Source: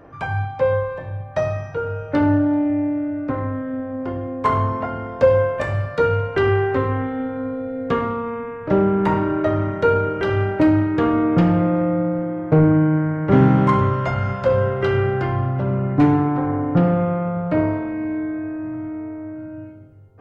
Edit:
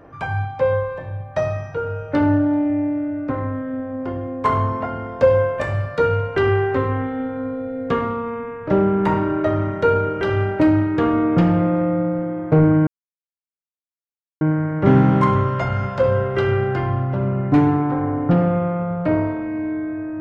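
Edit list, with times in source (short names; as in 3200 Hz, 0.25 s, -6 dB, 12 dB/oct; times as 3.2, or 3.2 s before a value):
12.87 insert silence 1.54 s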